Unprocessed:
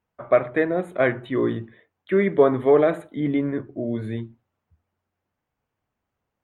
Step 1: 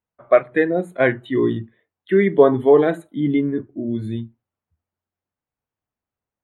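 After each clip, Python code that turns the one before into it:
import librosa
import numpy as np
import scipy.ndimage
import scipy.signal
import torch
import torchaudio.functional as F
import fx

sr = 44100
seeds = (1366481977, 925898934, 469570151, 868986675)

y = fx.noise_reduce_blind(x, sr, reduce_db=13)
y = y * librosa.db_to_amplitude(4.0)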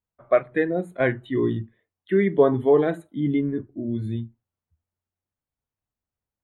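y = fx.low_shelf(x, sr, hz=110.0, db=11.0)
y = y * librosa.db_to_amplitude(-5.5)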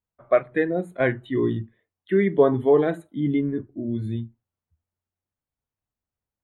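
y = x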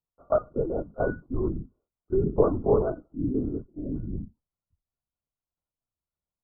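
y = fx.brickwall_lowpass(x, sr, high_hz=1500.0)
y = fx.lpc_vocoder(y, sr, seeds[0], excitation='whisper', order=10)
y = y * librosa.db_to_amplitude(-4.5)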